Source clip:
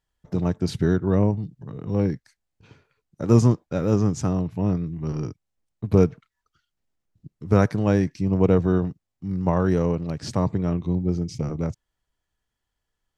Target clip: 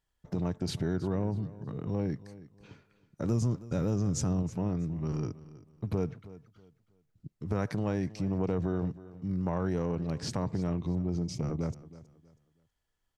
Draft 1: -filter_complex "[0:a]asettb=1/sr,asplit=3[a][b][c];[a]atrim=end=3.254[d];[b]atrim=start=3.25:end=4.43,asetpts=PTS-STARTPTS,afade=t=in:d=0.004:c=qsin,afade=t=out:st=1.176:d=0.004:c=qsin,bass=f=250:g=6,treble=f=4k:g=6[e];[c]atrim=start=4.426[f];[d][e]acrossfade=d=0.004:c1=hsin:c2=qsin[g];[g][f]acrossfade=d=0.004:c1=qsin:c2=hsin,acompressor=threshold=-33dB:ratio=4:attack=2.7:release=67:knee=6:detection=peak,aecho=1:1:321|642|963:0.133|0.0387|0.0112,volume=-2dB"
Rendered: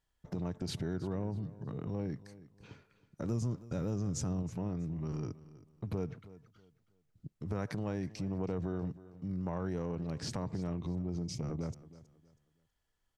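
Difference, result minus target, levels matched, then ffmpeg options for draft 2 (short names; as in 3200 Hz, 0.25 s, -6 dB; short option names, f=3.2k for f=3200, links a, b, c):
compressor: peak gain reduction +5.5 dB
-filter_complex "[0:a]asettb=1/sr,asplit=3[a][b][c];[a]atrim=end=3.254[d];[b]atrim=start=3.25:end=4.43,asetpts=PTS-STARTPTS,afade=t=in:d=0.004:c=qsin,afade=t=out:st=1.176:d=0.004:c=qsin,bass=f=250:g=6,treble=f=4k:g=6[e];[c]atrim=start=4.426[f];[d][e]acrossfade=d=0.004:c1=hsin:c2=qsin[g];[g][f]acrossfade=d=0.004:c1=qsin:c2=hsin,acompressor=threshold=-25.5dB:ratio=4:attack=2.7:release=67:knee=6:detection=peak,aecho=1:1:321|642|963:0.133|0.0387|0.0112,volume=-2dB"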